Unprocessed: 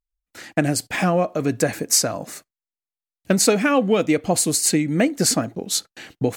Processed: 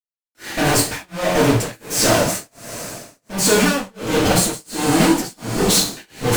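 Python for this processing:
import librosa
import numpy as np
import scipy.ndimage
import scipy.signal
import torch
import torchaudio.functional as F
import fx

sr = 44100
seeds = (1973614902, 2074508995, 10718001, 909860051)

y = fx.fuzz(x, sr, gain_db=42.0, gate_db=-44.0)
y = fx.rev_double_slope(y, sr, seeds[0], early_s=0.45, late_s=4.2, knee_db=-16, drr_db=-6.0)
y = y * (1.0 - 0.99 / 2.0 + 0.99 / 2.0 * np.cos(2.0 * np.pi * 1.4 * (np.arange(len(y)) / sr)))
y = y * 10.0 ** (-6.0 / 20.0)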